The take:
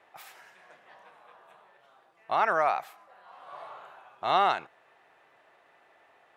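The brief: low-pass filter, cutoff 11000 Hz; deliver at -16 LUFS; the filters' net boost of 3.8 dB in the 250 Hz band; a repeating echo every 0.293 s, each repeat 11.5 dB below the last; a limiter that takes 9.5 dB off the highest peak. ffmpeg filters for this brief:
-af "lowpass=11k,equalizer=f=250:t=o:g=6,alimiter=limit=-21dB:level=0:latency=1,aecho=1:1:293|586|879:0.266|0.0718|0.0194,volume=19dB"

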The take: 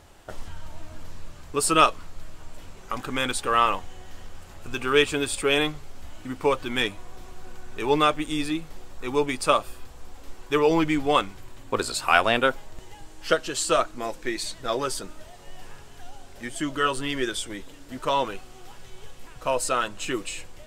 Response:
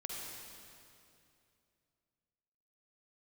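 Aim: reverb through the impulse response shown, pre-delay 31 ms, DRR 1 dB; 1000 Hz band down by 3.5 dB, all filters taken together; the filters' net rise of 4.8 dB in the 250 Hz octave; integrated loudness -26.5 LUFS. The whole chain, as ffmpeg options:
-filter_complex "[0:a]equalizer=f=250:t=o:g=6.5,equalizer=f=1k:t=o:g=-5,asplit=2[a][b];[1:a]atrim=start_sample=2205,adelay=31[c];[b][c]afir=irnorm=-1:irlink=0,volume=-1dB[d];[a][d]amix=inputs=2:normalize=0,volume=-3.5dB"

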